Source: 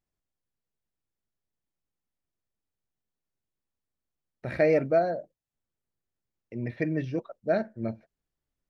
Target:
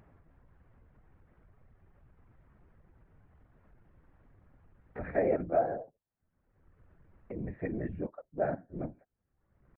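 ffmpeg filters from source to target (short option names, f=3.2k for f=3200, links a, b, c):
-af "lowpass=f=1.8k:w=0.5412,lowpass=f=1.8k:w=1.3066,afftfilt=real='hypot(re,im)*cos(2*PI*random(0))':imag='hypot(re,im)*sin(2*PI*random(1))':win_size=512:overlap=0.75,acompressor=mode=upward:threshold=-34dB:ratio=2.5,atempo=0.89"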